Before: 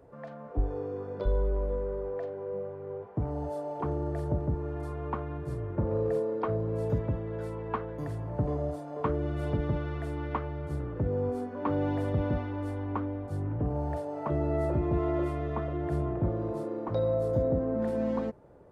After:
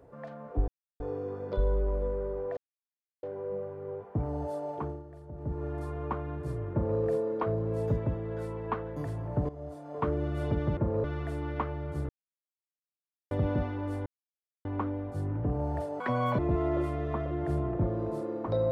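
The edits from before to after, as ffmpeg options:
-filter_complex "[0:a]asplit=13[a][b][c][d][e][f][g][h][i][j][k][l][m];[a]atrim=end=0.68,asetpts=PTS-STARTPTS,afade=t=out:st=0.676:d=0.004:c=hsin,apad=pad_dur=0.32[n];[b]atrim=start=0.68:end=2.25,asetpts=PTS-STARTPTS,afade=t=in:d=0.004:c=hsin,afade=t=out:st=1.566:d=0.004:c=hsin,apad=pad_dur=0.66[o];[c]atrim=start=2.25:end=4.06,asetpts=PTS-STARTPTS,afade=t=in:d=0.004:c=hsin,afade=t=out:st=1.48:d=0.33:silence=0.16788[p];[d]atrim=start=4.06:end=4.34,asetpts=PTS-STARTPTS,volume=-15.5dB[q];[e]atrim=start=4.34:end=8.51,asetpts=PTS-STARTPTS,afade=t=in:d=0.33:silence=0.16788,afade=t=out:st=4.166:d=0.004:c=hsin:silence=0.158489[r];[f]atrim=start=8.51:end=9.792,asetpts=PTS-STARTPTS,afade=t=in:d=0.61:silence=0.158489[s];[g]atrim=start=5.738:end=6.012[t];[h]atrim=start=9.788:end=10.84,asetpts=PTS-STARTPTS,afade=t=out:st=1.048:d=0.004:c=hsin[u];[i]atrim=start=10.84:end=12.06,asetpts=PTS-STARTPTS,volume=0[v];[j]atrim=start=12.06:end=12.81,asetpts=PTS-STARTPTS,afade=t=in:d=0.004:c=hsin,afade=t=out:st=0.746:d=0.004:c=hsin,apad=pad_dur=0.59[w];[k]atrim=start=12.81:end=14.164,asetpts=PTS-STARTPTS,afade=t=in:d=0.004:c=hsin[x];[l]atrim=start=14.16:end=14.81,asetpts=PTS-STARTPTS,asetrate=74088,aresample=44100,atrim=end_sample=17062,asetpts=PTS-STARTPTS[y];[m]atrim=start=14.806[z];[n][o][p][q][r][s]concat=n=6:v=0:a=1[aa];[aa][t]acrossfade=d=0.004:c1=hsin:c2=hsin[ab];[u][v][w][x]concat=n=4:v=0:a=1[ac];[ab][ac]acrossfade=d=0.004:c1=hsin:c2=hsin[ad];[ad][y]acrossfade=d=0.004:c1=hsin:c2=hsin[ae];[ae][z]acrossfade=d=0.004:c1=hsin:c2=hsin"

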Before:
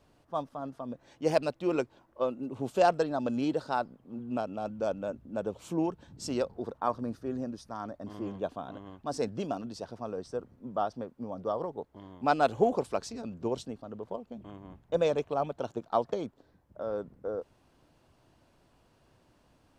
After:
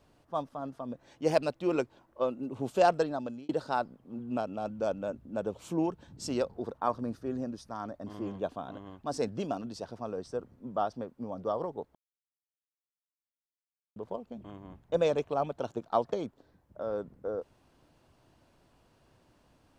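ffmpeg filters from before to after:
-filter_complex "[0:a]asplit=4[a][b][c][d];[a]atrim=end=3.49,asetpts=PTS-STARTPTS,afade=t=out:st=3.03:d=0.46[e];[b]atrim=start=3.49:end=11.95,asetpts=PTS-STARTPTS,afade=t=in:d=0.004:c=hsin,afade=t=out:st=8.456:d=0.004:c=hsin[f];[c]atrim=start=11.95:end=13.96,asetpts=PTS-STARTPTS,volume=0[g];[d]atrim=start=13.96,asetpts=PTS-STARTPTS,afade=t=in:d=0.004:c=hsin[h];[e][f][g][h]concat=n=4:v=0:a=1"

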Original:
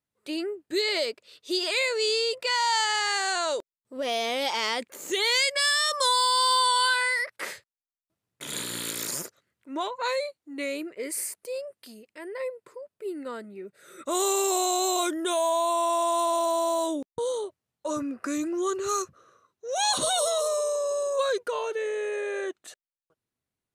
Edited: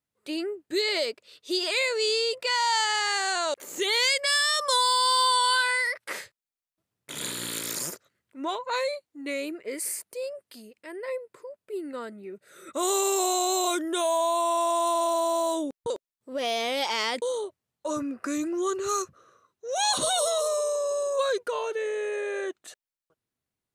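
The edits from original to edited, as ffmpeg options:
-filter_complex "[0:a]asplit=4[a][b][c][d];[a]atrim=end=3.542[e];[b]atrim=start=4.858:end=17.222[f];[c]atrim=start=3.538:end=4.862[g];[d]atrim=start=17.218[h];[e][f]acrossfade=d=0.004:c1=hsin:c2=hsin[i];[i][g]acrossfade=d=0.004:c1=hsin:c2=hsin[j];[j][h]acrossfade=d=0.004:c1=hsin:c2=hsin"

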